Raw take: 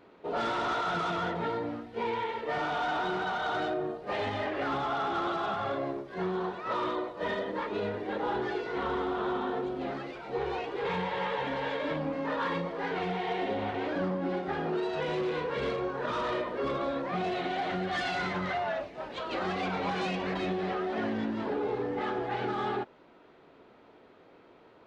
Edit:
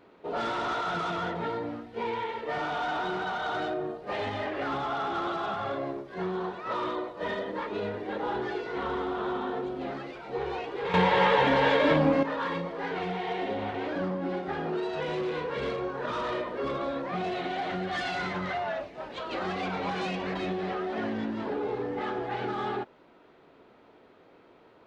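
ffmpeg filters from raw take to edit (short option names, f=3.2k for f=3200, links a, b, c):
-filter_complex "[0:a]asplit=3[a][b][c];[a]atrim=end=10.942[d];[b]atrim=start=10.938:end=12.232,asetpts=PTS-STARTPTS,volume=10dB[e];[c]atrim=start=12.228[f];[d][e]acrossfade=d=0.004:c1=hsin:c2=hsin[g];[g][f]acrossfade=d=0.004:c1=hsin:c2=hsin"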